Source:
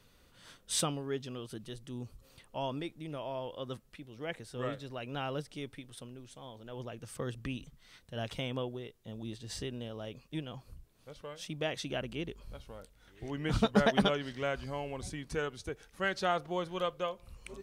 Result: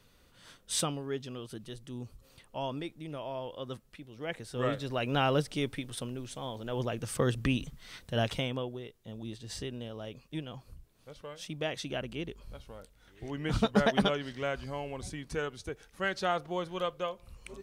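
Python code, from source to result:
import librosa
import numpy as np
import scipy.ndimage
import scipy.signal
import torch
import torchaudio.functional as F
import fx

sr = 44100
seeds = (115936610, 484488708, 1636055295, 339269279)

y = fx.gain(x, sr, db=fx.line((4.15, 0.5), (5.03, 9.5), (8.16, 9.5), (8.6, 0.5)))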